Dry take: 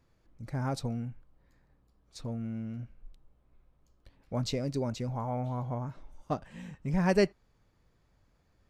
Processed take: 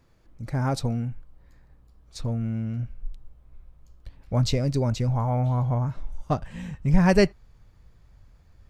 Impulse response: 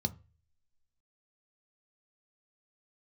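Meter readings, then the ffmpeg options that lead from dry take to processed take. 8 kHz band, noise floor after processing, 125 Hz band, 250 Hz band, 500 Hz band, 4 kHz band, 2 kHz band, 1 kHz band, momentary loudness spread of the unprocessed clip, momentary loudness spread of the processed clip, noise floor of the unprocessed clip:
+7.0 dB, -56 dBFS, +10.5 dB, +7.5 dB, +5.5 dB, +7.0 dB, +7.0 dB, +6.5 dB, 16 LU, 17 LU, -70 dBFS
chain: -af "asubboost=boost=3:cutoff=140,volume=7dB"

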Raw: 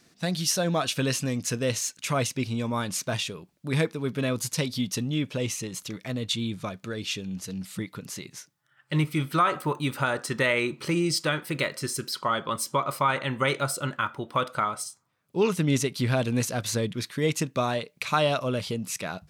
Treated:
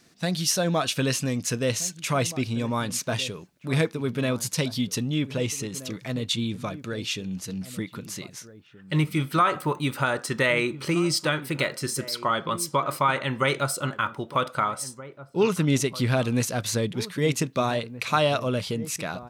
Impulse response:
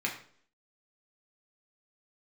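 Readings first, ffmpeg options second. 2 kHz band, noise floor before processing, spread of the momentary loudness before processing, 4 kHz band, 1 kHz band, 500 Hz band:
+1.5 dB, -67 dBFS, 10 LU, +1.5 dB, +1.5 dB, +1.5 dB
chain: -filter_complex "[0:a]asplit=2[a][b];[b]adelay=1574,volume=-15dB,highshelf=f=4k:g=-35.4[c];[a][c]amix=inputs=2:normalize=0,volume=1.5dB"

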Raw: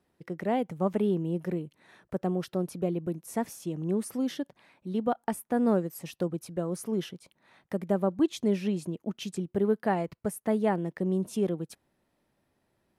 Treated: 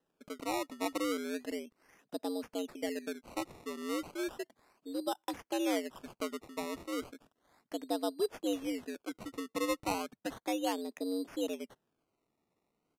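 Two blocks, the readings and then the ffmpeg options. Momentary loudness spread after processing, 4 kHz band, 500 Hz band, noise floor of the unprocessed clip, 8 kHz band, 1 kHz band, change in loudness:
10 LU, +2.5 dB, -7.0 dB, -76 dBFS, -1.5 dB, -4.5 dB, -7.0 dB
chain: -af "afreqshift=91,acrusher=samples=19:mix=1:aa=0.000001:lfo=1:lforange=19:lforate=0.34,aresample=32000,aresample=44100,volume=-7.5dB"

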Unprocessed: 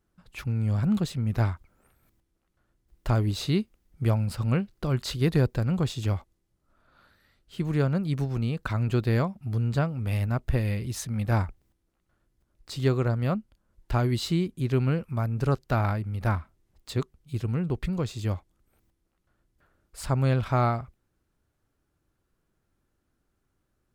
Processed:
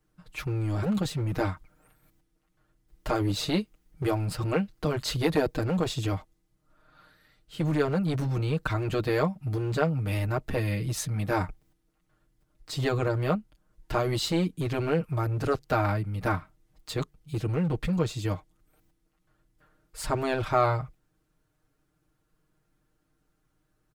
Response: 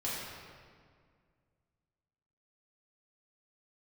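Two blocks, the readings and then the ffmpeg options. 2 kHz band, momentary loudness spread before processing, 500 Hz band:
+2.5 dB, 8 LU, +3.0 dB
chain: -filter_complex "[0:a]aecho=1:1:6.5:0.88,acrossover=split=220|1600[a][b][c];[a]aeval=exprs='0.0531*(abs(mod(val(0)/0.0531+3,4)-2)-1)':c=same[d];[d][b][c]amix=inputs=3:normalize=0"

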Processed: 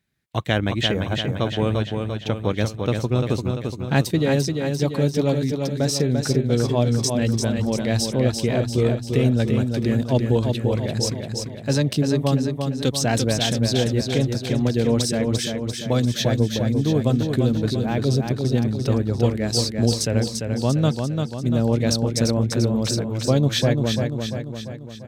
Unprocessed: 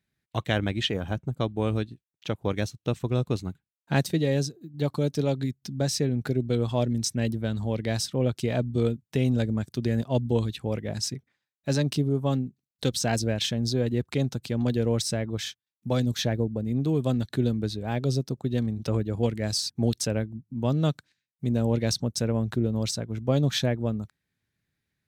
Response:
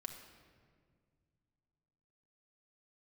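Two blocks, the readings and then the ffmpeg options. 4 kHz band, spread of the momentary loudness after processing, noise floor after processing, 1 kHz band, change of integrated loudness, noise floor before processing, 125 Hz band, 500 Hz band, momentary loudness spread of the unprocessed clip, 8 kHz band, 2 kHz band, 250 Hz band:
+6.0 dB, 5 LU, -34 dBFS, +6.0 dB, +6.0 dB, under -85 dBFS, +6.0 dB, +6.0 dB, 6 LU, +6.0 dB, +6.0 dB, +6.0 dB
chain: -af "aecho=1:1:344|688|1032|1376|1720|2064|2408:0.562|0.304|0.164|0.0885|0.0478|0.0258|0.0139,volume=4.5dB"

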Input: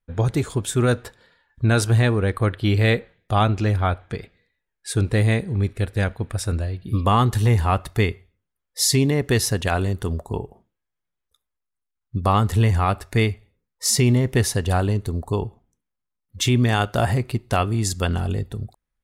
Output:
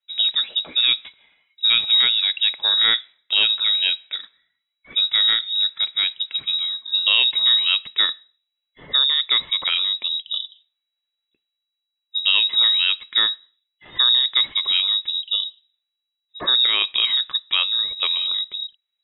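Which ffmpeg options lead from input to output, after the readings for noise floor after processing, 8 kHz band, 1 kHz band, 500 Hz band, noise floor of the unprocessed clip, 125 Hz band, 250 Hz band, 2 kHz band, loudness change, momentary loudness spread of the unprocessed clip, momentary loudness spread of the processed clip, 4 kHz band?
-81 dBFS, under -40 dB, -11.0 dB, under -15 dB, -81 dBFS, under -35 dB, under -25 dB, +2.0 dB, +4.0 dB, 10 LU, 10 LU, +17.5 dB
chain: -af "lowpass=f=3.3k:t=q:w=0.5098,lowpass=f=3.3k:t=q:w=0.6013,lowpass=f=3.3k:t=q:w=0.9,lowpass=f=3.3k:t=q:w=2.563,afreqshift=-3900"

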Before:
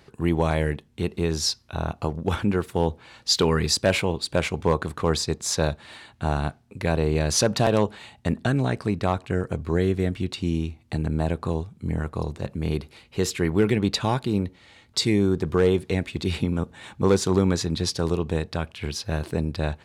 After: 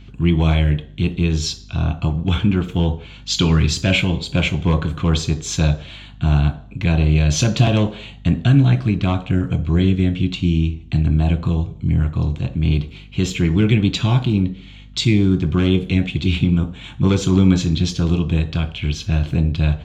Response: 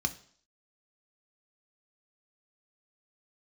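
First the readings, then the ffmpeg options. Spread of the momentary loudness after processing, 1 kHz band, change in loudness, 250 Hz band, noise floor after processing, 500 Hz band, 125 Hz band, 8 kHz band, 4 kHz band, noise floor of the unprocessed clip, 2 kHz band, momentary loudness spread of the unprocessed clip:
7 LU, -1.0 dB, +6.5 dB, +7.5 dB, -40 dBFS, -2.5 dB, +10.5 dB, 0.0 dB, +3.5 dB, -57 dBFS, +4.5 dB, 9 LU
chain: -filter_complex "[0:a]equalizer=f=3.15k:t=o:w=0.33:g=8,equalizer=f=5k:t=o:w=0.33:g=-7,equalizer=f=10k:t=o:w=0.33:g=-10,asplit=2[a][b];[1:a]atrim=start_sample=2205[c];[b][c]afir=irnorm=-1:irlink=0,volume=-1.5dB[d];[a][d]amix=inputs=2:normalize=0,aeval=exprs='val(0)+0.01*(sin(2*PI*50*n/s)+sin(2*PI*2*50*n/s)/2+sin(2*PI*3*50*n/s)/3+sin(2*PI*4*50*n/s)/4+sin(2*PI*5*50*n/s)/5)':c=same"

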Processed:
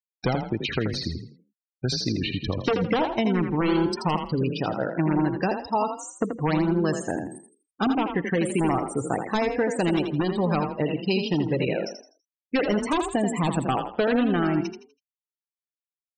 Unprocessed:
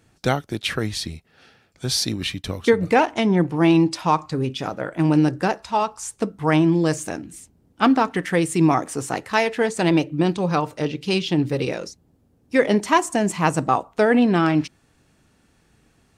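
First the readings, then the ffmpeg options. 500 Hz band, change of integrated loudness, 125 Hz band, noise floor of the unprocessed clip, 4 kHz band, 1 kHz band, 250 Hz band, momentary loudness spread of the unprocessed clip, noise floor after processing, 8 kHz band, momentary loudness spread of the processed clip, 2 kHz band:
-4.0 dB, -4.5 dB, -3.5 dB, -61 dBFS, -4.5 dB, -5.5 dB, -4.0 dB, 10 LU, under -85 dBFS, -8.0 dB, 6 LU, -6.0 dB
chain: -filter_complex "[0:a]bandreject=f=3.4k:w=6.9,aeval=exprs='0.237*(abs(mod(val(0)/0.237+3,4)-2)-1)':c=same,acrossover=split=780|3800[a][b][c];[a]acompressor=threshold=-25dB:ratio=4[d];[b]acompressor=threshold=-34dB:ratio=4[e];[c]acompressor=threshold=-37dB:ratio=4[f];[d][e][f]amix=inputs=3:normalize=0,afftfilt=real='re*gte(hypot(re,im),0.0316)':imag='im*gte(hypot(re,im),0.0316)':win_size=1024:overlap=0.75,asplit=5[g][h][i][j][k];[h]adelay=82,afreqshift=31,volume=-7dB[l];[i]adelay=164,afreqshift=62,volume=-17.5dB[m];[j]adelay=246,afreqshift=93,volume=-27.9dB[n];[k]adelay=328,afreqshift=124,volume=-38.4dB[o];[g][l][m][n][o]amix=inputs=5:normalize=0,volume=2.5dB"

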